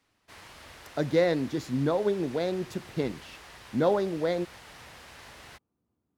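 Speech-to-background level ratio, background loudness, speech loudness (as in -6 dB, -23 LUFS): 18.5 dB, -47.5 LUFS, -29.0 LUFS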